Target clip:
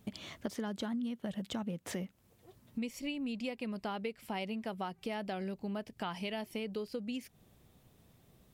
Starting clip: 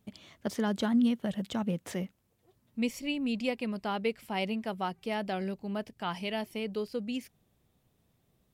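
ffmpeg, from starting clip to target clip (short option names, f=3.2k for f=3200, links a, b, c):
-af "acompressor=threshold=-44dB:ratio=6,volume=7.5dB"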